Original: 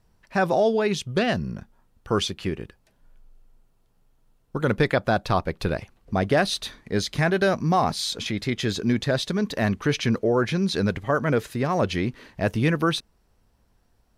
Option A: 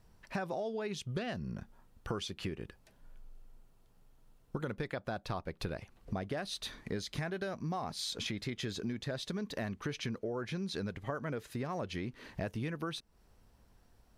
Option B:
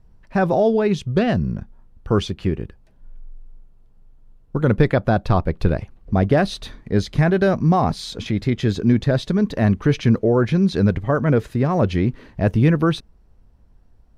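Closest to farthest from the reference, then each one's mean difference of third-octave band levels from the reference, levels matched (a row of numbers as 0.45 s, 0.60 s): A, B; 3.0 dB, 5.0 dB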